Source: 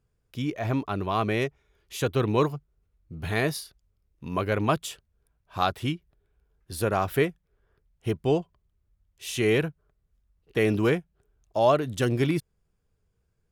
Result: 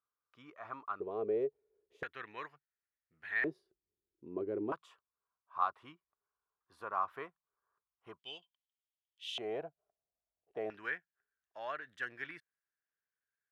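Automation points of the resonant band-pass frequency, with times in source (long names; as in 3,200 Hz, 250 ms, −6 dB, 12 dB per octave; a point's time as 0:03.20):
resonant band-pass, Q 6.3
1,200 Hz
from 0:01.00 440 Hz
from 0:02.03 1,800 Hz
from 0:03.44 360 Hz
from 0:04.72 1,100 Hz
from 0:08.19 3,200 Hz
from 0:09.38 690 Hz
from 0:10.70 1,700 Hz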